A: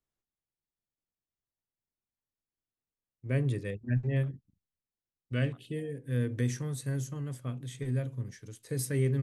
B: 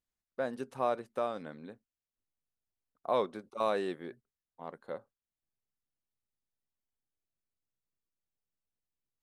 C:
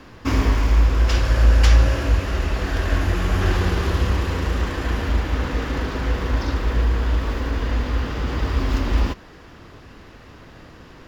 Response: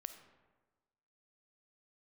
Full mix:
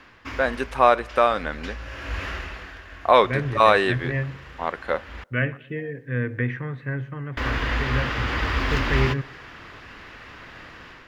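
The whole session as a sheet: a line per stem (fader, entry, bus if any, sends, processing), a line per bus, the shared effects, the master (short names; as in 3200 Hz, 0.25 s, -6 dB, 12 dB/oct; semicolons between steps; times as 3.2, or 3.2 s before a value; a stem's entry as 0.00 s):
-3.5 dB, 0.00 s, no send, echo send -22.5 dB, LPF 2200 Hz 24 dB/oct
+3.0 dB, 0.00 s, send -11 dB, no echo send, dry
-11.5 dB, 0.00 s, muted 5.24–7.37, no send, no echo send, auto duck -19 dB, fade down 0.80 s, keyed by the second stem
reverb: on, RT60 1.3 s, pre-delay 10 ms
echo: feedback echo 0.118 s, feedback 46%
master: bell 2000 Hz +13.5 dB 2.4 oct; AGC gain up to 6.5 dB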